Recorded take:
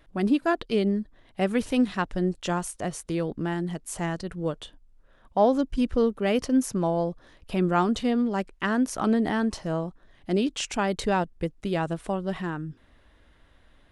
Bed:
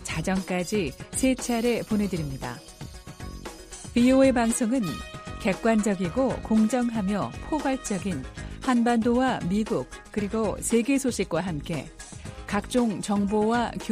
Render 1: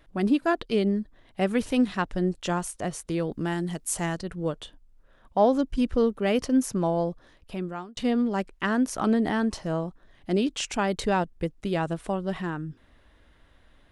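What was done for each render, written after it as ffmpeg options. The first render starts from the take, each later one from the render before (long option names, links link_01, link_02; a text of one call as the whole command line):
ffmpeg -i in.wav -filter_complex "[0:a]asettb=1/sr,asplit=3[link_01][link_02][link_03];[link_01]atrim=end=3.314[link_04];[link_02]atrim=start=3.31:end=4.16,asetpts=PTS-STARTPTS,afade=type=in:duration=0.004:curve=qsin,afade=type=out:start_time=0.846:duration=0.004:curve=qsin,highshelf=frequency=4100:gain=8.5[link_05];[link_03]atrim=start=4.156[link_06];[link_04][link_05]acrossfade=duration=0.004:curve1=hsin:curve2=qsin[link_07];[link_07][link_06]acrossfade=duration=0.004:curve1=qsin:curve2=hsin,asplit=2[link_08][link_09];[link_08]atrim=end=7.97,asetpts=PTS-STARTPTS,afade=type=out:start_time=7.09:duration=0.88[link_10];[link_09]atrim=start=7.97,asetpts=PTS-STARTPTS,afade=type=in:duration=0.004:curve=hsin[link_11];[link_10][link_11]concat=n=2:v=0:a=1" out.wav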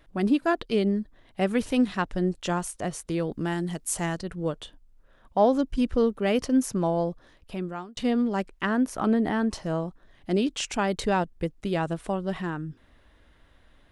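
ffmpeg -i in.wav -filter_complex "[0:a]asettb=1/sr,asplit=3[link_01][link_02][link_03];[link_01]atrim=end=8.654[link_04];[link_02]atrim=start=8.65:end=9.5,asetpts=PTS-STARTPTS,afade=type=in:duration=0.004:curve=qsin,afade=type=out:start_time=0.846:duration=0.004:curve=qsin,equalizer=frequency=6100:width_type=o:width=1.8:gain=-6.5[link_05];[link_03]atrim=start=9.496[link_06];[link_04][link_05]acrossfade=duration=0.004:curve1=hsin:curve2=qsin[link_07];[link_07][link_06]acrossfade=duration=0.004:curve1=qsin:curve2=hsin" out.wav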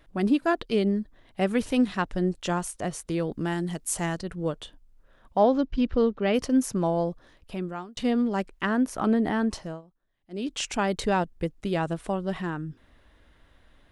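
ffmpeg -i in.wav -filter_complex "[0:a]asettb=1/sr,asplit=3[link_01][link_02][link_03];[link_01]atrim=end=5.434[link_04];[link_02]atrim=start=5.43:end=6.34,asetpts=PTS-STARTPTS,afade=type=in:duration=0.004:curve=qsin,afade=type=out:start_time=0.906:duration=0.004:curve=qsin,lowpass=frequency=5000:width=0.5412,lowpass=frequency=5000:width=1.3066[link_05];[link_03]atrim=start=6.336[link_06];[link_04][link_05]acrossfade=duration=0.004:curve1=hsin:curve2=qsin[link_07];[link_07][link_06]acrossfade=duration=0.004:curve1=qsin:curve2=hsin,asplit=3[link_08][link_09][link_10];[link_08]atrim=end=9.82,asetpts=PTS-STARTPTS,afade=type=out:start_time=9.54:duration=0.28:silence=0.0794328[link_11];[link_09]atrim=start=9.82:end=10.3,asetpts=PTS-STARTPTS,volume=-22dB[link_12];[link_10]atrim=start=10.3,asetpts=PTS-STARTPTS,afade=type=in:duration=0.28:silence=0.0794328[link_13];[link_11][link_12][link_13]concat=n=3:v=0:a=1" out.wav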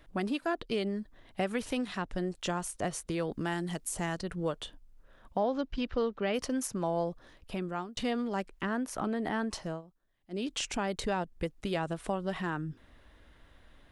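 ffmpeg -i in.wav -filter_complex "[0:a]acrossover=split=550[link_01][link_02];[link_01]acompressor=threshold=-33dB:ratio=6[link_03];[link_02]alimiter=level_in=0.5dB:limit=-24dB:level=0:latency=1:release=239,volume=-0.5dB[link_04];[link_03][link_04]amix=inputs=2:normalize=0" out.wav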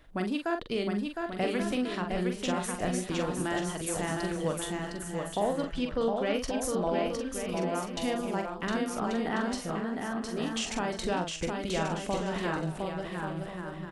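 ffmpeg -i in.wav -filter_complex "[0:a]asplit=2[link_01][link_02];[link_02]adelay=44,volume=-6dB[link_03];[link_01][link_03]amix=inputs=2:normalize=0,aecho=1:1:710|1136|1392|1545|1637:0.631|0.398|0.251|0.158|0.1" out.wav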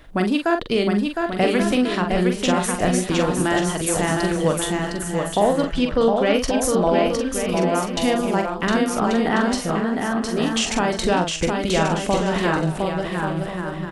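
ffmpeg -i in.wav -af "volume=11dB" out.wav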